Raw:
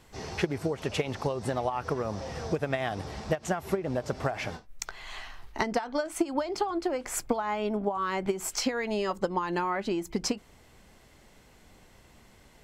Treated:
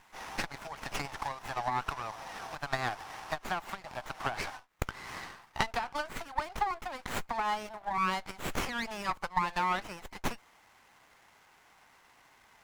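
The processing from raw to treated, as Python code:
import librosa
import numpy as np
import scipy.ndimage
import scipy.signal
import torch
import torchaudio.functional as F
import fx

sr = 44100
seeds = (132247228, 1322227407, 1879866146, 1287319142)

y = fx.rattle_buzz(x, sr, strikes_db=-31.0, level_db=-35.0)
y = scipy.signal.sosfilt(scipy.signal.butter(6, 780.0, 'highpass', fs=sr, output='sos'), y)
y = fx.running_max(y, sr, window=9)
y = F.gain(torch.from_numpy(y), 2.5).numpy()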